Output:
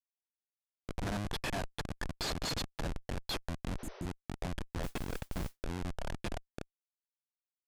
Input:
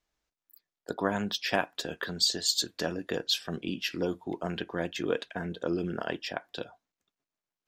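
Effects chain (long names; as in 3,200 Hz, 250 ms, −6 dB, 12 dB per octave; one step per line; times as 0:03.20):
low-shelf EQ 92 Hz −3 dB
comb filter 1.2 ms, depth 67%
comparator with hysteresis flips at −27.5 dBFS
Bessel low-pass filter 10,000 Hz, order 8
0:04.83–0:05.64: noise that follows the level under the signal 18 dB
downward compressor, threshold −34 dBFS, peak gain reduction 3.5 dB
0:03.81–0:04.03: healed spectral selection 380–6,200 Hz before
level +1 dB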